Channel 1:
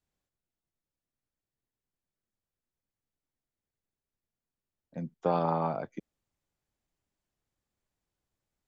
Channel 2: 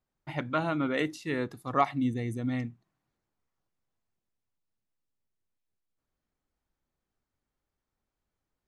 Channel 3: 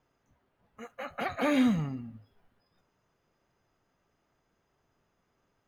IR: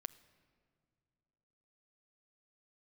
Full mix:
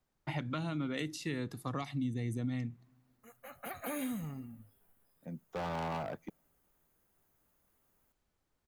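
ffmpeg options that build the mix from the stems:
-filter_complex "[0:a]tremolo=f=0.53:d=0.58,asoftclip=type=hard:threshold=-32dB,adelay=300,volume=-2dB,asplit=2[link_01][link_02];[link_02]volume=-20dB[link_03];[1:a]acrossover=split=240|3000[link_04][link_05][link_06];[link_05]acompressor=threshold=-40dB:ratio=6[link_07];[link_04][link_07][link_06]amix=inputs=3:normalize=0,volume=3dB,asplit=3[link_08][link_09][link_10];[link_09]volume=-16.5dB[link_11];[2:a]acompressor=threshold=-35dB:ratio=1.5,aexciter=amount=6.5:drive=9.2:freq=7900,adelay=2450,volume=-6dB[link_12];[link_10]apad=whole_len=358187[link_13];[link_12][link_13]sidechaincompress=threshold=-47dB:ratio=4:attack=42:release=946[link_14];[3:a]atrim=start_sample=2205[link_15];[link_03][link_11]amix=inputs=2:normalize=0[link_16];[link_16][link_15]afir=irnorm=-1:irlink=0[link_17];[link_01][link_08][link_14][link_17]amix=inputs=4:normalize=0,acompressor=threshold=-34dB:ratio=3"

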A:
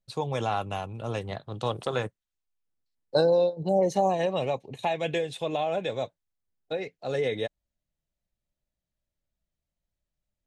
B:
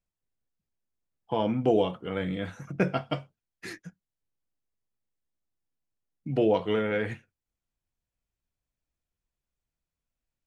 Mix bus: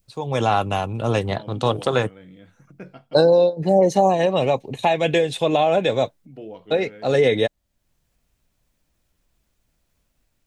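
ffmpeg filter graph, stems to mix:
ffmpeg -i stem1.wav -i stem2.wav -filter_complex "[0:a]dynaudnorm=framelen=120:gausssize=5:maxgain=14.5dB,volume=-3.5dB[link_01];[1:a]adynamicequalizer=threshold=0.00891:dfrequency=1100:dqfactor=0.7:tfrequency=1100:tqfactor=0.7:attack=5:release=100:ratio=0.375:range=2.5:mode=cutabove:tftype=bell,acompressor=mode=upward:threshold=-30dB:ratio=2.5,volume=-14.5dB[link_02];[link_01][link_02]amix=inputs=2:normalize=0,equalizer=frequency=270:width_type=o:width=0.77:gain=2.5" out.wav

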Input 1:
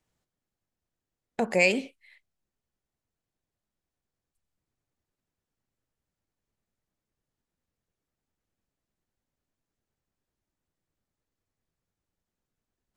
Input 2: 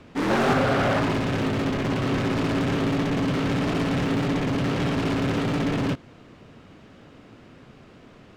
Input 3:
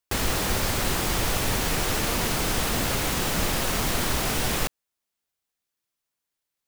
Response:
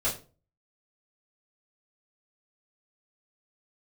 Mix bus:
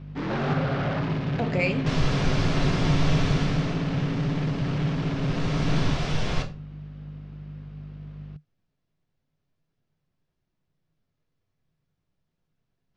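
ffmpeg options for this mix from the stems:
-filter_complex "[0:a]acompressor=threshold=-45dB:ratio=1.5,volume=2.5dB,asplit=2[link_01][link_02];[link_02]volume=-13dB[link_03];[1:a]aeval=exprs='val(0)+0.0158*(sin(2*PI*50*n/s)+sin(2*PI*2*50*n/s)/2+sin(2*PI*3*50*n/s)/3+sin(2*PI*4*50*n/s)/4+sin(2*PI*5*50*n/s)/5)':channel_layout=same,volume=-7.5dB[link_04];[2:a]adelay=1750,volume=4.5dB,afade=type=out:start_time=3.26:duration=0.54:silence=0.237137,afade=type=in:start_time=5.16:duration=0.6:silence=0.266073,asplit=2[link_05][link_06];[link_06]volume=-7.5dB[link_07];[3:a]atrim=start_sample=2205[link_08];[link_03][link_07]amix=inputs=2:normalize=0[link_09];[link_09][link_08]afir=irnorm=-1:irlink=0[link_10];[link_01][link_04][link_05][link_10]amix=inputs=4:normalize=0,lowpass=frequency=5300:width=0.5412,lowpass=frequency=5300:width=1.3066,equalizer=frequency=150:width=3.8:gain=14.5"

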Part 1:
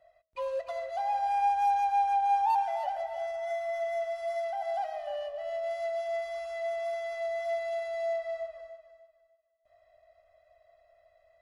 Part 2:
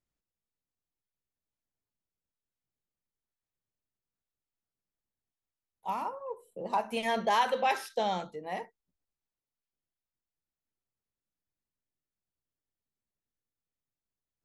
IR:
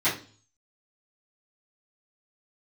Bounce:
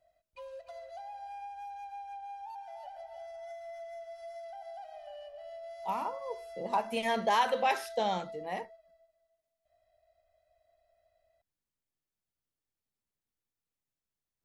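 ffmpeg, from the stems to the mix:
-filter_complex "[0:a]equalizer=frequency=990:width=0.68:gain=-5.5,aecho=1:1:1.3:0.38,acompressor=threshold=-36dB:ratio=6,volume=-6.5dB[link_01];[1:a]volume=-0.5dB[link_02];[link_01][link_02]amix=inputs=2:normalize=0"

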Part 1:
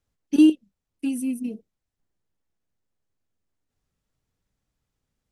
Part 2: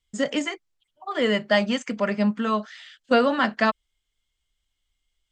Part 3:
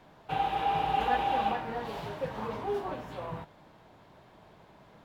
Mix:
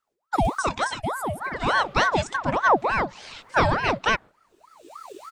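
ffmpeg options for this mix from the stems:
ffmpeg -i stem1.wav -i stem2.wav -i stem3.wav -filter_complex "[0:a]acompressor=threshold=-17dB:ratio=6,volume=1dB,asplit=2[link_01][link_02];[1:a]acompressor=mode=upward:threshold=-26dB:ratio=2.5,bass=frequency=250:gain=12,treble=frequency=4000:gain=7,adelay=450,volume=-1dB[link_03];[2:a]asoftclip=type=tanh:threshold=-29.5dB,flanger=delay=20:depth=2.5:speed=0.68,adelay=850,volume=-8dB[link_04];[link_02]apad=whole_len=260156[link_05];[link_04][link_05]sidechaincompress=threshold=-29dB:ratio=8:attack=16:release=628[link_06];[link_01][link_03][link_06]amix=inputs=3:normalize=0,aeval=exprs='val(0)*sin(2*PI*840*n/s+840*0.6/3.4*sin(2*PI*3.4*n/s))':channel_layout=same" out.wav

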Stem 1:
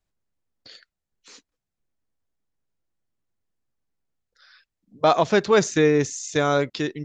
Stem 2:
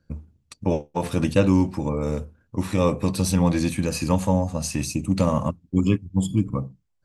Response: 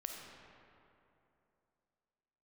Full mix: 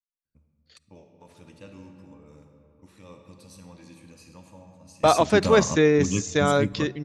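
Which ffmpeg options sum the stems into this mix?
-filter_complex "[0:a]agate=range=-34dB:threshold=-43dB:ratio=16:detection=peak,volume=-1dB,asplit=3[link_01][link_02][link_03];[link_02]volume=-20dB[link_04];[1:a]equalizer=frequency=4200:width=0.31:gain=6.5,adelay=250,volume=-7dB,asplit=2[link_05][link_06];[link_06]volume=-20.5dB[link_07];[link_03]apad=whole_len=321774[link_08];[link_05][link_08]sidechaingate=range=-33dB:threshold=-53dB:ratio=16:detection=peak[link_09];[2:a]atrim=start_sample=2205[link_10];[link_04][link_07]amix=inputs=2:normalize=0[link_11];[link_11][link_10]afir=irnorm=-1:irlink=0[link_12];[link_01][link_09][link_12]amix=inputs=3:normalize=0"

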